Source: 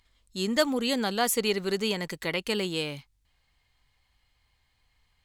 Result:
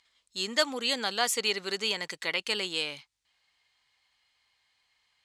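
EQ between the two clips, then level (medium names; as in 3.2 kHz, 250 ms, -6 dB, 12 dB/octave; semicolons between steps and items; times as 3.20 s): high-pass 960 Hz 6 dB/octave; distance through air 87 m; treble shelf 5 kHz +11 dB; +1.5 dB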